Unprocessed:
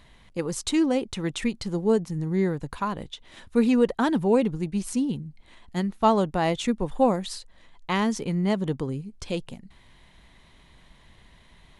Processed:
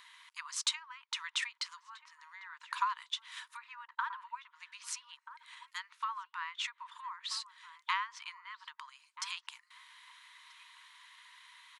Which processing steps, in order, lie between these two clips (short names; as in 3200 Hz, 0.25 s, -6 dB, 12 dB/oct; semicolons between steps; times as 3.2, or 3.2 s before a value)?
treble ducked by the level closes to 1700 Hz, closed at -19 dBFS; compressor 6:1, threshold -28 dBFS, peak gain reduction 12.5 dB; brick-wall FIR high-pass 910 Hz; outdoor echo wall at 220 m, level -12 dB; gain +2.5 dB